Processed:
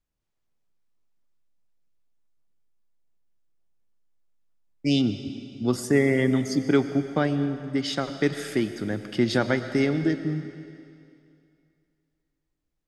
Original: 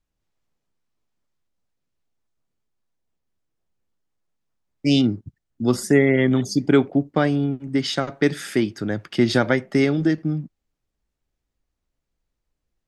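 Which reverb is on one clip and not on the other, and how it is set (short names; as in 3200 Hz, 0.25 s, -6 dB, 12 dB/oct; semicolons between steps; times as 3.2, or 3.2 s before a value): digital reverb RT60 2.5 s, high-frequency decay 1×, pre-delay 70 ms, DRR 10.5 dB; gain -4.5 dB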